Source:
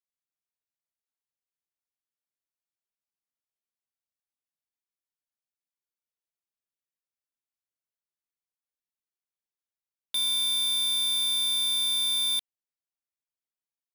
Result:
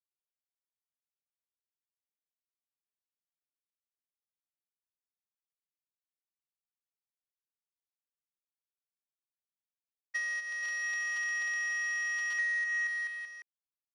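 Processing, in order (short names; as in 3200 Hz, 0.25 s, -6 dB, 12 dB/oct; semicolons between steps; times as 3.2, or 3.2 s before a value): expander -22 dBFS; steep high-pass 710 Hz 36 dB/oct; tilt +3.5 dB/oct; bouncing-ball echo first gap 0.25 s, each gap 0.9×, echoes 5; compressor, threshold -29 dBFS, peak gain reduction 7.5 dB; air absorption 81 m; pitch shift -11 st; gain +4 dB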